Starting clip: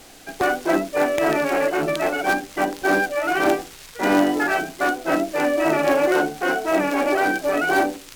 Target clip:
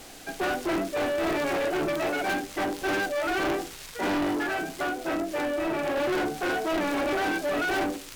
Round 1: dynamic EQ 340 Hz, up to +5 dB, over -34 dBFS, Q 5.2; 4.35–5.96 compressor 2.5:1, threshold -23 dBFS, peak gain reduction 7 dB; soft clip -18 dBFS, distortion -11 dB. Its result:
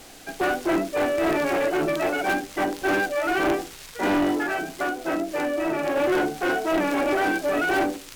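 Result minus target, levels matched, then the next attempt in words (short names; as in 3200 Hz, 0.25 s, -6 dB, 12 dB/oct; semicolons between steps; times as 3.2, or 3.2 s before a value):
soft clip: distortion -5 dB
dynamic EQ 340 Hz, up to +5 dB, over -34 dBFS, Q 5.2; 4.35–5.96 compressor 2.5:1, threshold -23 dBFS, peak gain reduction 7 dB; soft clip -24.5 dBFS, distortion -6 dB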